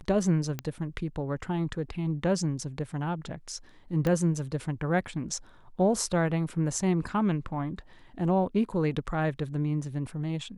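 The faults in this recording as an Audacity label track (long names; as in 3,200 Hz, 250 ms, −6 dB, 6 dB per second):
0.590000	0.590000	click −17 dBFS
4.070000	4.070000	click −16 dBFS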